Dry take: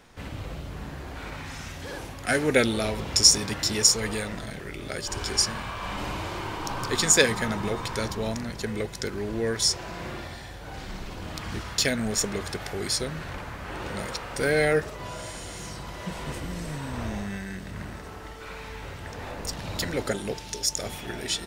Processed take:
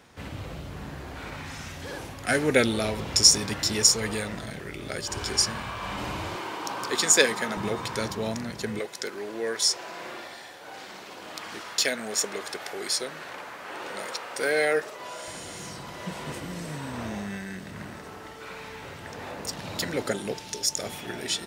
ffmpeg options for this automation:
-af "asetnsamples=n=441:p=0,asendcmd='6.36 highpass f 270;7.57 highpass f 110;8.79 highpass f 390;15.28 highpass f 130',highpass=64"

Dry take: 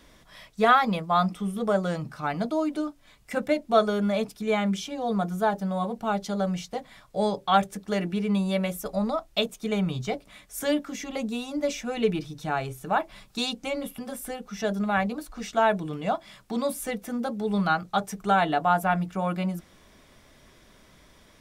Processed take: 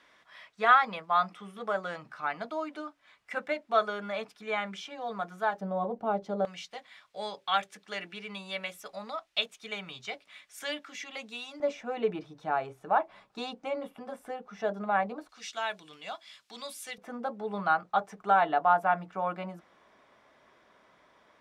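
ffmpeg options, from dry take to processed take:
-af "asetnsamples=n=441:p=0,asendcmd='5.61 bandpass f 540;6.45 bandpass f 2500;11.6 bandpass f 830;15.29 bandpass f 3900;16.98 bandpass f 970',bandpass=f=1600:t=q:w=0.92:csg=0"

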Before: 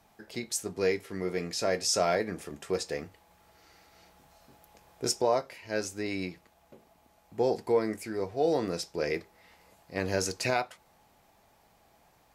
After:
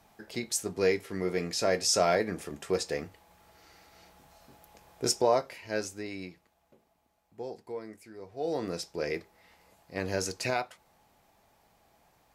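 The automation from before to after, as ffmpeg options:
-af "volume=4.22,afade=t=out:st=5.58:d=0.52:silence=0.421697,afade=t=out:st=6.1:d=1.44:silence=0.446684,afade=t=in:st=8.23:d=0.48:silence=0.281838"

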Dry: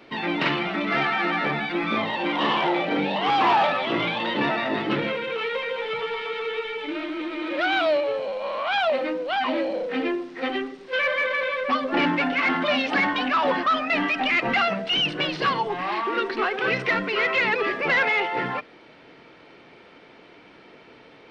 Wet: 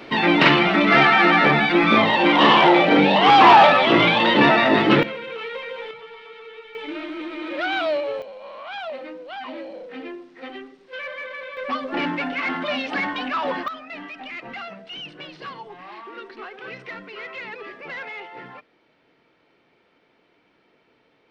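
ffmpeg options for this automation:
-af "asetnsamples=n=441:p=0,asendcmd='5.03 volume volume -4dB;5.91 volume volume -12dB;6.75 volume volume -1.5dB;8.22 volume volume -9.5dB;11.57 volume volume -3dB;13.68 volume volume -13dB',volume=2.82"

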